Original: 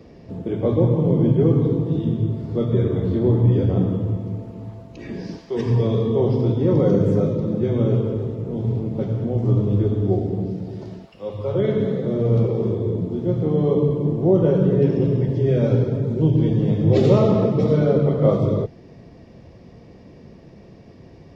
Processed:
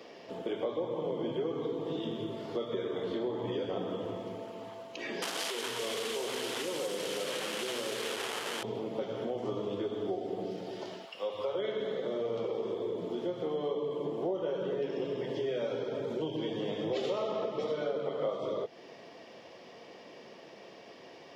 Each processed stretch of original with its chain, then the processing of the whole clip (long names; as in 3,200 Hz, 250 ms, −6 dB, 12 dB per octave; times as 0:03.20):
0:05.22–0:08.63: linear delta modulator 64 kbit/s, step −23 dBFS + high-pass filter 160 Hz 6 dB per octave + downward compressor 4 to 1, threshold −26 dBFS
whole clip: high-pass filter 590 Hz 12 dB per octave; parametric band 3,100 Hz +7.5 dB 0.29 octaves; downward compressor 5 to 1, threshold −35 dBFS; level +3.5 dB